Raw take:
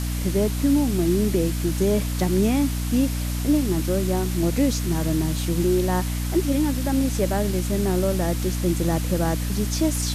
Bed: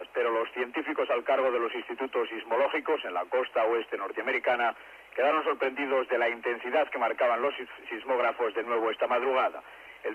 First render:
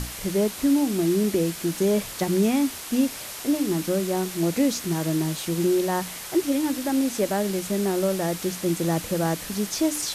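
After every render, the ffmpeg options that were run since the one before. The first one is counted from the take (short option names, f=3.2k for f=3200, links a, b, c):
-af "bandreject=f=60:t=h:w=6,bandreject=f=120:t=h:w=6,bandreject=f=180:t=h:w=6,bandreject=f=240:t=h:w=6,bandreject=f=300:t=h:w=6"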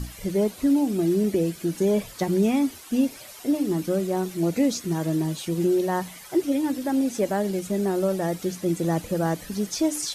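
-af "afftdn=nr=12:nf=-37"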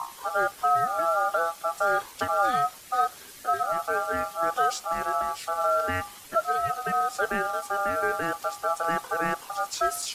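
-filter_complex "[0:a]acrossover=split=3700[a][b];[b]acrusher=bits=6:mode=log:mix=0:aa=0.000001[c];[a][c]amix=inputs=2:normalize=0,aeval=exprs='val(0)*sin(2*PI*1000*n/s)':c=same"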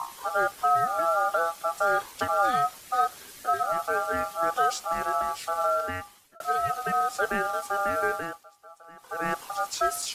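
-filter_complex "[0:a]asplit=4[a][b][c][d];[a]atrim=end=6.4,asetpts=PTS-STARTPTS,afade=t=out:st=5.6:d=0.8[e];[b]atrim=start=6.4:end=8.44,asetpts=PTS-STARTPTS,afade=t=in:d=0.004:c=hsin,afade=t=out:st=1.67:d=0.37:silence=0.0794328[f];[c]atrim=start=8.44:end=8.97,asetpts=PTS-STARTPTS,volume=-22dB[g];[d]atrim=start=8.97,asetpts=PTS-STARTPTS,afade=t=in:d=0.37:silence=0.0794328[h];[e][f][g][h]concat=n=4:v=0:a=1"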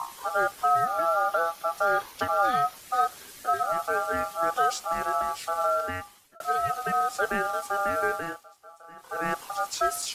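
-filter_complex "[0:a]asettb=1/sr,asplit=3[a][b][c];[a]atrim=end=0.854[d];[b]atrim=start=0.85:end=2.77,asetpts=PTS-STARTPTS,afade=t=in:d=0.004:c=qsin,afade=t=out:st=1.916:d=0.004:c=qsin,equalizer=f=7.9k:w=3.8:g=-8.5[e];[c]atrim=start=2.766[f];[d][e]acrossfade=d=0.004:c1=hsin:c2=qsin[g];[g][f]acrossfade=d=0.004:c1=qsin:c2=hsin,asettb=1/sr,asplit=3[h][i][j];[h]atrim=end=8.234[k];[i]atrim=start=8.23:end=9.2,asetpts=PTS-STARTPTS,afade=t=in:d=0.004:c=qsin,afade=t=out:st=0.966:d=0.004:c=qsin,asplit=2[l][m];[m]adelay=31,volume=-6dB[n];[l][n]amix=inputs=2:normalize=0,atrim=end_sample=42777[o];[j]atrim=start=9.196[p];[k][o]acrossfade=d=0.004:c1=hsin:c2=qsin[q];[q][p]acrossfade=d=0.004:c1=qsin:c2=hsin"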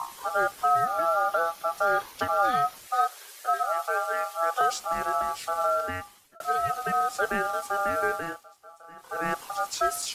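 -filter_complex "[0:a]asettb=1/sr,asplit=3[a][b][c];[a]atrim=end=2.874[d];[b]atrim=start=2.87:end=4.61,asetpts=PTS-STARTPTS,afade=t=in:d=0.004:c=qsin,afade=t=out:st=1.736:d=0.004:c=qsin,highpass=f=460:w=0.5412,highpass=f=460:w=1.3066[e];[c]atrim=start=4.606[f];[d][e]acrossfade=d=0.004:c1=hsin:c2=qsin[g];[g][f]acrossfade=d=0.004:c1=qsin:c2=hsin"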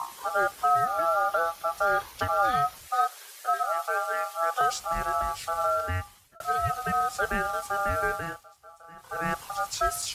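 -af "highpass=46,asubboost=boost=8:cutoff=100"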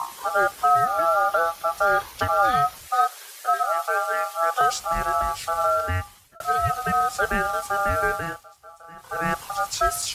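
-af "volume=4.5dB"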